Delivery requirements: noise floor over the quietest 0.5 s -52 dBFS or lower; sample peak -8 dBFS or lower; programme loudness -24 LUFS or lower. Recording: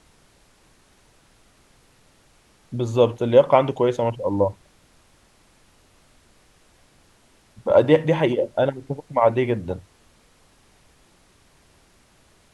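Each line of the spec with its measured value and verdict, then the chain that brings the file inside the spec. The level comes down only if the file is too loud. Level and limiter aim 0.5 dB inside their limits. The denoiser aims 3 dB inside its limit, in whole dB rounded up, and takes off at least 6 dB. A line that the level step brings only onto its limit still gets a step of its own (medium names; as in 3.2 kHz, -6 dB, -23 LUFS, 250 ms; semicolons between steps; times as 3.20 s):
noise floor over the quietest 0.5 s -57 dBFS: pass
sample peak -2.5 dBFS: fail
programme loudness -20.5 LUFS: fail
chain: trim -4 dB; peak limiter -8.5 dBFS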